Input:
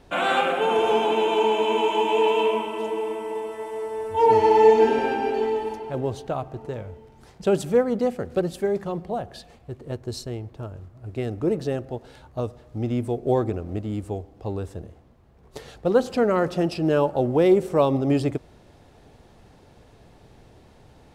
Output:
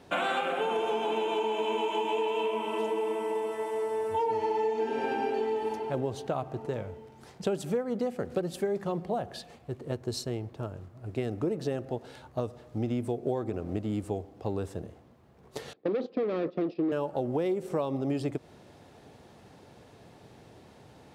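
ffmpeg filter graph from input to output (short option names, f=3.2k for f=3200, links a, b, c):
-filter_complex "[0:a]asettb=1/sr,asplit=3[a][b][c];[a]atrim=end=15.734[d];[b]atrim=start=15.73:end=16.92,asetpts=PTS-STARTPTS,afade=t=in:d=0.004:c=qsin,afade=t=out:st=1.186:d=0.004:c=qsin,agate=range=-17dB:threshold=-31dB:ratio=16:release=100:detection=peak,asoftclip=type=hard:threshold=-23.5dB,highpass=200,equalizer=f=200:t=q:w=4:g=3,equalizer=f=310:t=q:w=4:g=9,equalizer=f=460:t=q:w=4:g=6,equalizer=f=880:t=q:w=4:g=-7,equalizer=f=1.5k:t=q:w=4:g=-8,equalizer=f=2.9k:t=q:w=4:g=-6,lowpass=f=3.8k:w=0.5412,lowpass=f=3.8k:w=1.3066[e];[c]atrim=start=16.916[f];[d][e]acrossfade=d=0.004:c1=hsin:c2=qsin[g];[g][f]acrossfade=d=0.004:c1=qsin:c2=hsin,highpass=110,acompressor=threshold=-26dB:ratio=10"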